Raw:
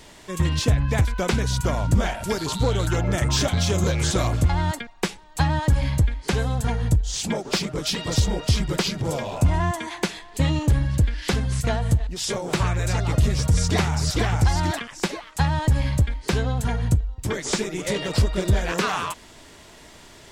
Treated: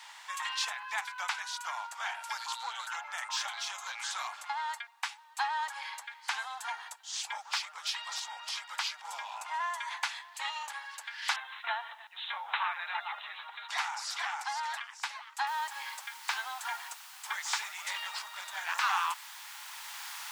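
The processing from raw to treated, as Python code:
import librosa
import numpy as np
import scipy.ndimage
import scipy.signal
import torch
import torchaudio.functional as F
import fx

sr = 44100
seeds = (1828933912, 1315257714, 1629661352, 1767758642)

y = fx.cheby1_lowpass(x, sr, hz=4000.0, order=10, at=(11.36, 13.69))
y = fx.noise_floor_step(y, sr, seeds[0], at_s=15.47, before_db=-66, after_db=-42, tilt_db=0.0)
y = scipy.signal.sosfilt(scipy.signal.cheby1(5, 1.0, 830.0, 'highpass', fs=sr, output='sos'), y)
y = fx.high_shelf(y, sr, hz=6200.0, db=-11.0)
y = fx.rider(y, sr, range_db=10, speed_s=2.0)
y = y * 10.0 ** (-4.0 / 20.0)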